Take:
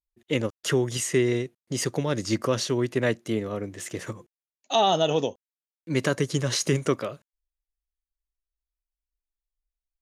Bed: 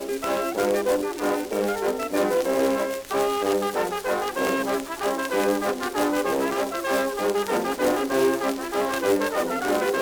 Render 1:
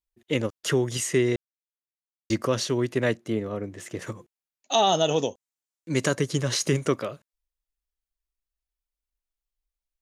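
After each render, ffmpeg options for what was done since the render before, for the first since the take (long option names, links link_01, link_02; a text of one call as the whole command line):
ffmpeg -i in.wav -filter_complex "[0:a]asettb=1/sr,asplit=3[link_01][link_02][link_03];[link_01]atrim=end=3.174[link_04];[link_02]atrim=start=3.17:end=4.02,asetpts=PTS-STARTPTS,afade=type=in:duration=0.004:curve=qsin,afade=type=out:start_time=0.846:duration=0.004:curve=qsin,highshelf=frequency=2400:gain=-6.5[link_05];[link_03]atrim=start=4.016[link_06];[link_04][link_05]acrossfade=duration=0.004:curve1=hsin:curve2=qsin[link_07];[link_07][link_06]acrossfade=duration=0.004:curve1=qsin:curve2=hsin,asettb=1/sr,asplit=3[link_08][link_09][link_10];[link_08]atrim=end=4.724[link_11];[link_09]atrim=start=4.72:end=6.15,asetpts=PTS-STARTPTS,afade=type=in:duration=0.004:curve=qsin,afade=type=out:start_time=1.426:duration=0.004:curve=qsin,equalizer=frequency=7200:width=1.5:gain=8[link_12];[link_10]atrim=start=6.146[link_13];[link_11][link_12]acrossfade=duration=0.004:curve1=hsin:curve2=qsin[link_14];[link_14][link_13]acrossfade=duration=0.004:curve1=qsin:curve2=hsin,asplit=3[link_15][link_16][link_17];[link_15]atrim=end=1.36,asetpts=PTS-STARTPTS,afade=type=out:start_time=1.356:duration=0.004:curve=hsin[link_18];[link_16]atrim=start=1.36:end=2.3,asetpts=PTS-STARTPTS,volume=0[link_19];[link_17]atrim=start=2.3,asetpts=PTS-STARTPTS,afade=type=in:duration=0.004:curve=hsin[link_20];[link_18][link_19][link_20]concat=n=3:v=0:a=1" out.wav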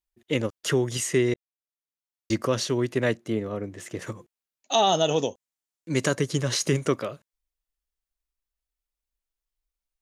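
ffmpeg -i in.wav -filter_complex "[0:a]asplit=2[link_01][link_02];[link_01]atrim=end=1.34,asetpts=PTS-STARTPTS,afade=type=out:start_time=1.336:duration=0.004:curve=hsin[link_03];[link_02]atrim=start=1.34,asetpts=PTS-STARTPTS,afade=type=in:duration=0.98[link_04];[link_03][link_04]concat=n=2:v=0:a=1" out.wav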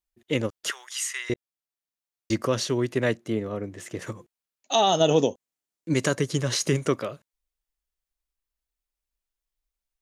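ffmpeg -i in.wav -filter_complex "[0:a]asettb=1/sr,asplit=3[link_01][link_02][link_03];[link_01]atrim=end=0.704[link_04];[link_02]atrim=start=0.7:end=1.3,asetpts=PTS-STARTPTS,afade=type=in:duration=0.004:curve=qsin,afade=type=out:start_time=0.596:duration=0.004:curve=qsin,highpass=frequency=1100:width=0.5412,highpass=frequency=1100:width=1.3066[link_05];[link_03]atrim=start=1.296[link_06];[link_04][link_05]acrossfade=duration=0.004:curve1=hsin:curve2=qsin[link_07];[link_07][link_06]acrossfade=duration=0.004:curve1=qsin:curve2=hsin,asettb=1/sr,asplit=3[link_08][link_09][link_10];[link_08]atrim=end=5.004[link_11];[link_09]atrim=start=5:end=5.94,asetpts=PTS-STARTPTS,afade=type=in:duration=0.004:curve=qsin,afade=type=out:start_time=0.936:duration=0.004:curve=qsin,equalizer=frequency=260:width_type=o:width=2.4:gain=6[link_12];[link_10]atrim=start=5.936[link_13];[link_11][link_12]acrossfade=duration=0.004:curve1=hsin:curve2=qsin[link_14];[link_14][link_13]acrossfade=duration=0.004:curve1=qsin:curve2=hsin" out.wav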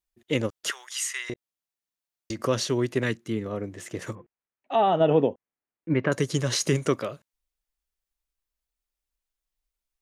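ffmpeg -i in.wav -filter_complex "[0:a]asettb=1/sr,asplit=3[link_01][link_02][link_03];[link_01]atrim=end=1.254[link_04];[link_02]atrim=start=1.25:end=2.44,asetpts=PTS-STARTPTS,afade=type=in:duration=0.004:curve=qsin,afade=type=out:start_time=1.186:duration=0.004:curve=qsin,acompressor=threshold=-28dB:ratio=6:attack=3.2:release=140:knee=1:detection=peak[link_05];[link_03]atrim=start=2.436[link_06];[link_04][link_05]acrossfade=duration=0.004:curve1=hsin:curve2=qsin[link_07];[link_07][link_06]acrossfade=duration=0.004:curve1=qsin:curve2=hsin,asettb=1/sr,asplit=3[link_08][link_09][link_10];[link_08]atrim=end=3.034[link_11];[link_09]atrim=start=3.03:end=3.46,asetpts=PTS-STARTPTS,afade=type=in:duration=0.004:curve=qsin,afade=type=out:start_time=0.426:duration=0.004:curve=qsin,equalizer=frequency=630:width=1.9:gain=-13[link_12];[link_10]atrim=start=3.456[link_13];[link_11][link_12]acrossfade=duration=0.004:curve1=hsin:curve2=qsin[link_14];[link_14][link_13]acrossfade=duration=0.004:curve1=qsin:curve2=hsin,asettb=1/sr,asplit=3[link_15][link_16][link_17];[link_15]atrim=end=4.154[link_18];[link_16]atrim=start=4.15:end=6.12,asetpts=PTS-STARTPTS,afade=type=in:duration=0.004:curve=qsin,afade=type=out:start_time=1.966:duration=0.004:curve=qsin,lowpass=frequency=2300:width=0.5412,lowpass=frequency=2300:width=1.3066[link_19];[link_17]atrim=start=6.116[link_20];[link_18][link_19]acrossfade=duration=0.004:curve1=hsin:curve2=qsin[link_21];[link_21][link_20]acrossfade=duration=0.004:curve1=qsin:curve2=hsin" out.wav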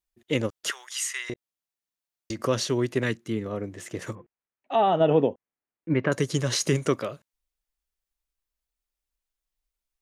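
ffmpeg -i in.wav -af anull out.wav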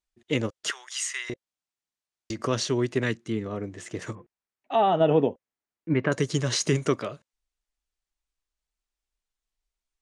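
ffmpeg -i in.wav -af "lowpass=frequency=8900:width=0.5412,lowpass=frequency=8900:width=1.3066,bandreject=frequency=530:width=12" out.wav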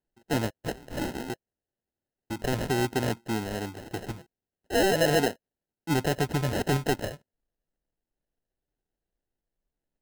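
ffmpeg -i in.wav -af "acrusher=samples=38:mix=1:aa=0.000001,asoftclip=type=tanh:threshold=-16dB" out.wav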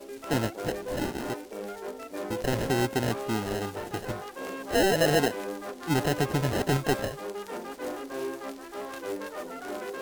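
ffmpeg -i in.wav -i bed.wav -filter_complex "[1:a]volume=-13dB[link_01];[0:a][link_01]amix=inputs=2:normalize=0" out.wav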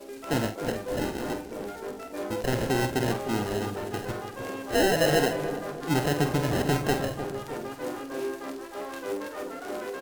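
ffmpeg -i in.wav -filter_complex "[0:a]asplit=2[link_01][link_02];[link_02]adelay=48,volume=-8.5dB[link_03];[link_01][link_03]amix=inputs=2:normalize=0,asplit=2[link_04][link_05];[link_05]adelay=306,lowpass=frequency=950:poles=1,volume=-8.5dB,asplit=2[link_06][link_07];[link_07]adelay=306,lowpass=frequency=950:poles=1,volume=0.48,asplit=2[link_08][link_09];[link_09]adelay=306,lowpass=frequency=950:poles=1,volume=0.48,asplit=2[link_10][link_11];[link_11]adelay=306,lowpass=frequency=950:poles=1,volume=0.48,asplit=2[link_12][link_13];[link_13]adelay=306,lowpass=frequency=950:poles=1,volume=0.48[link_14];[link_04][link_06][link_08][link_10][link_12][link_14]amix=inputs=6:normalize=0" out.wav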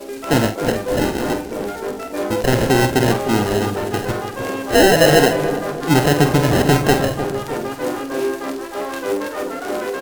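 ffmpeg -i in.wav -af "volume=11dB,alimiter=limit=-2dB:level=0:latency=1" out.wav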